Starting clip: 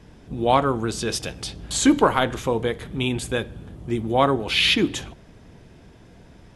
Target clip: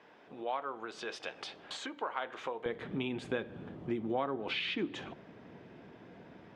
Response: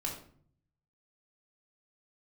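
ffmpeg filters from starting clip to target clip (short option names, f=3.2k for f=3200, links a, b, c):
-af "acompressor=threshold=-28dB:ratio=12,asetnsamples=n=441:p=0,asendcmd='2.66 highpass f 200',highpass=590,lowpass=2.6k,volume=-1dB"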